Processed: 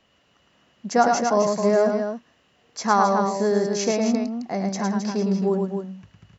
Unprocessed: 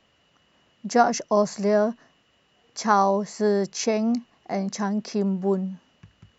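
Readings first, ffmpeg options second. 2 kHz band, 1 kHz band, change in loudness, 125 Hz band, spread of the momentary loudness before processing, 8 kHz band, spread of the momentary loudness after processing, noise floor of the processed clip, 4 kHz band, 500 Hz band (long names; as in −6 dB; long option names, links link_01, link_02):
+2.0 dB, +2.0 dB, +1.5 dB, +2.0 dB, 12 LU, can't be measured, 11 LU, −63 dBFS, +2.0 dB, +2.0 dB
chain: -af "aecho=1:1:107.9|265.3:0.631|0.447"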